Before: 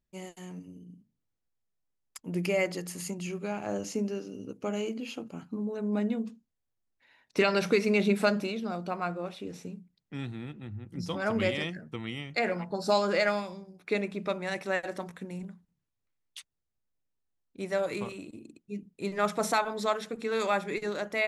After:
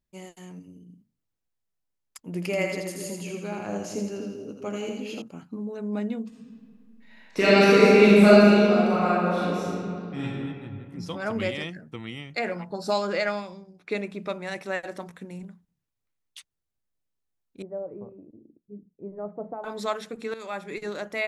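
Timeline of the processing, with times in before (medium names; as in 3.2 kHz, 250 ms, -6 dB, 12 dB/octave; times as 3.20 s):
2.26–5.22 s: two-band feedback delay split 560 Hz, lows 247 ms, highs 82 ms, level -4 dB
6.28–10.22 s: reverb throw, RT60 2.4 s, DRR -9.5 dB
13.07–13.91 s: low-pass 7.7 kHz
17.62–19.64 s: four-pole ladder low-pass 810 Hz, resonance 25%
20.34–20.87 s: fade in, from -14 dB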